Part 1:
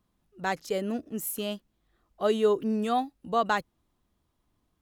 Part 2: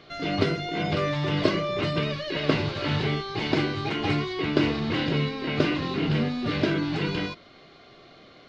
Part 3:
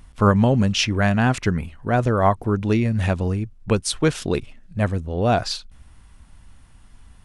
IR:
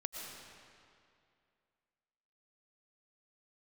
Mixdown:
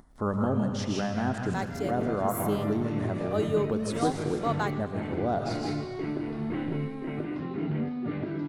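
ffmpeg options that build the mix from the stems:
-filter_complex "[0:a]adelay=1100,volume=-6dB,asplit=2[link_01][link_02];[link_02]volume=-9.5dB[link_03];[1:a]lowshelf=frequency=170:gain=9.5,adelay=1600,volume=-4.5dB,asplit=2[link_04][link_05];[link_05]volume=-22dB[link_06];[2:a]acompressor=mode=upward:threshold=-38dB:ratio=2.5,volume=-6.5dB,asplit=3[link_07][link_08][link_09];[link_08]volume=-6.5dB[link_10];[link_09]volume=-12.5dB[link_11];[link_04][link_07]amix=inputs=2:normalize=0,highpass=190,equalizer=frequency=520:width_type=q:width=4:gain=-6,equalizer=frequency=1100:width_type=q:width=4:gain=-6,equalizer=frequency=1600:width_type=q:width=4:gain=-6,lowpass=frequency=2200:width=0.5412,lowpass=frequency=2200:width=1.3066,alimiter=limit=-21.5dB:level=0:latency=1:release=234,volume=0dB[link_12];[3:a]atrim=start_sample=2205[link_13];[link_03][link_10]amix=inputs=2:normalize=0[link_14];[link_14][link_13]afir=irnorm=-1:irlink=0[link_15];[link_06][link_11]amix=inputs=2:normalize=0,aecho=0:1:158:1[link_16];[link_01][link_12][link_15][link_16]amix=inputs=4:normalize=0,equalizer=frequency=2600:width_type=o:width=0.8:gain=-6"

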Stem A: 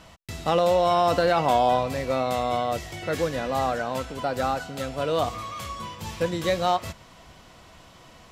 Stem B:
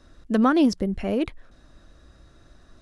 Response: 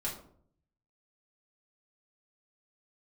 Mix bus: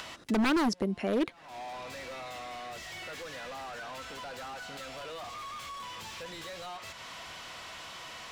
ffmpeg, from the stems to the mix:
-filter_complex "[0:a]equalizer=frequency=370:width=0.32:gain=-9.5,acompressor=threshold=-43dB:ratio=2.5,asplit=2[link_01][link_02];[link_02]highpass=frequency=720:poles=1,volume=32dB,asoftclip=type=tanh:threshold=-23.5dB[link_03];[link_01][link_03]amix=inputs=2:normalize=0,lowpass=frequency=3300:poles=1,volume=-6dB,volume=-11dB[link_04];[1:a]highpass=210,aeval=exprs='0.112*(abs(mod(val(0)/0.112+3,4)-2)-1)':channel_layout=same,volume=1dB,asplit=2[link_05][link_06];[link_06]apad=whole_len=366570[link_07];[link_04][link_07]sidechaincompress=threshold=-45dB:ratio=6:attack=16:release=236[link_08];[link_08][link_05]amix=inputs=2:normalize=0,acompressor=mode=upward:threshold=-40dB:ratio=2.5,alimiter=limit=-21.5dB:level=0:latency=1:release=313"

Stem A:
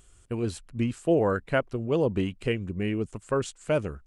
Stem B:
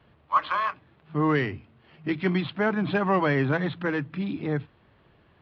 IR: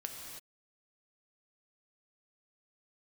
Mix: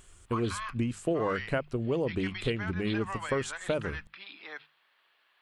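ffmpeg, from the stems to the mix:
-filter_complex "[0:a]acompressor=threshold=-28dB:ratio=6,volume=2dB[link_01];[1:a]highpass=1200,highshelf=frequency=3800:gain=11,alimiter=level_in=0.5dB:limit=-24dB:level=0:latency=1:release=371,volume=-0.5dB,volume=-3.5dB[link_02];[link_01][link_02]amix=inputs=2:normalize=0,bandreject=frequency=50:width_type=h:width=6,bandreject=frequency=100:width_type=h:width=6,bandreject=frequency=150:width_type=h:width=6,bandreject=frequency=200:width_type=h:width=6"

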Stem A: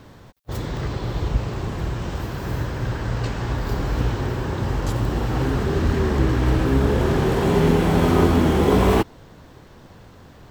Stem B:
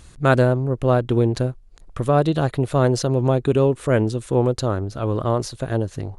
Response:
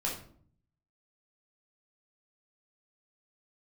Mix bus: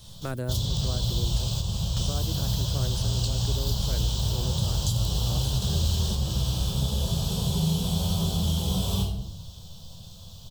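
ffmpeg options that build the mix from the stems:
-filter_complex "[0:a]firequalizer=gain_entry='entry(180,0);entry(290,-21);entry(610,-5);entry(2000,-22);entry(3200,13)':delay=0.05:min_phase=1,volume=2dB,asplit=2[link_01][link_02];[link_02]volume=-8dB[link_03];[1:a]aemphasis=mode=production:type=50fm,volume=-13.5dB,asplit=2[link_04][link_05];[link_05]apad=whole_len=467651[link_06];[link_01][link_06]sidechaingate=range=-33dB:threshold=-47dB:ratio=16:detection=peak[link_07];[2:a]atrim=start_sample=2205[link_08];[link_03][link_08]afir=irnorm=-1:irlink=0[link_09];[link_07][link_04][link_09]amix=inputs=3:normalize=0,acrossover=split=320|8000[link_10][link_11][link_12];[link_10]acompressor=threshold=-24dB:ratio=4[link_13];[link_11]acompressor=threshold=-34dB:ratio=4[link_14];[link_12]acompressor=threshold=-42dB:ratio=4[link_15];[link_13][link_14][link_15]amix=inputs=3:normalize=0"

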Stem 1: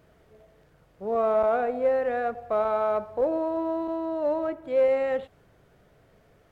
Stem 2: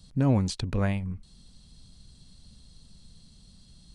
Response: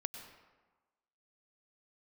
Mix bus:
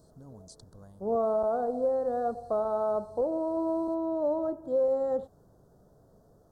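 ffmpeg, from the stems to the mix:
-filter_complex "[0:a]equalizer=frequency=210:width=1.5:gain=3,volume=-1dB[link_01];[1:a]acompressor=threshold=-37dB:ratio=2,tiltshelf=frequency=1300:gain=-6,volume=-12dB[link_02];[link_01][link_02]amix=inputs=2:normalize=0,asuperstop=centerf=2400:order=4:qfactor=0.56,alimiter=limit=-20dB:level=0:latency=1:release=453"

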